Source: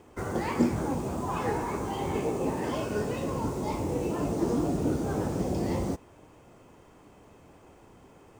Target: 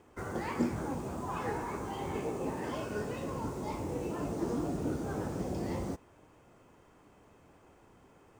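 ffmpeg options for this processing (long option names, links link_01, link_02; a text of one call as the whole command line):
ffmpeg -i in.wav -af "equalizer=frequency=1500:width_type=o:width=0.95:gain=3.5,volume=-6.5dB" out.wav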